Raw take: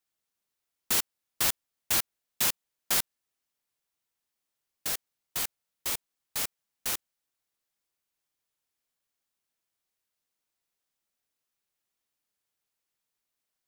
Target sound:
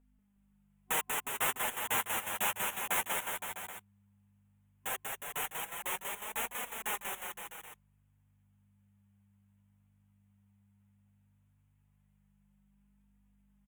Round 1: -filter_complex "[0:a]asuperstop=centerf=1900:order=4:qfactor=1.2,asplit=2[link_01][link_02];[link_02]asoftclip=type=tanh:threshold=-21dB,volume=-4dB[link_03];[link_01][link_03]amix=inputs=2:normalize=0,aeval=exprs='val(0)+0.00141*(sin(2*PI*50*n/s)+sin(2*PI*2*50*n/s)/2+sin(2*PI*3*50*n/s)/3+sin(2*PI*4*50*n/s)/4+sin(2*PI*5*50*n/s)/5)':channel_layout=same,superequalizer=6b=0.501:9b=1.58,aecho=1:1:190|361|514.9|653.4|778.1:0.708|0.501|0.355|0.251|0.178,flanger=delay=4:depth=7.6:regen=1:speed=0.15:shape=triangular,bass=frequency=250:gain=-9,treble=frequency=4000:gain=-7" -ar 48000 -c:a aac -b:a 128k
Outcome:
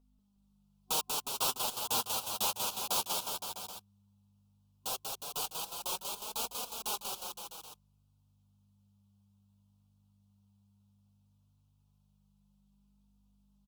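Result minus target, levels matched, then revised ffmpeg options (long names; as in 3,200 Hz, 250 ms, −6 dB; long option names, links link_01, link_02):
2,000 Hz band −11.0 dB
-filter_complex "[0:a]asuperstop=centerf=4700:order=4:qfactor=1.2,asplit=2[link_01][link_02];[link_02]asoftclip=type=tanh:threshold=-21dB,volume=-4dB[link_03];[link_01][link_03]amix=inputs=2:normalize=0,aeval=exprs='val(0)+0.00141*(sin(2*PI*50*n/s)+sin(2*PI*2*50*n/s)/2+sin(2*PI*3*50*n/s)/3+sin(2*PI*4*50*n/s)/4+sin(2*PI*5*50*n/s)/5)':channel_layout=same,superequalizer=6b=0.501:9b=1.58,aecho=1:1:190|361|514.9|653.4|778.1:0.708|0.501|0.355|0.251|0.178,flanger=delay=4:depth=7.6:regen=1:speed=0.15:shape=triangular,bass=frequency=250:gain=-9,treble=frequency=4000:gain=-7" -ar 48000 -c:a aac -b:a 128k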